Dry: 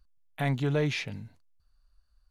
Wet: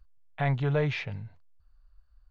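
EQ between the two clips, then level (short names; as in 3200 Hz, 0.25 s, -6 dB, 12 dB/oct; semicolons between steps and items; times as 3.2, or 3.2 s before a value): tape spacing loss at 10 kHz 31 dB; bell 260 Hz -13 dB 1.3 oct; +7.0 dB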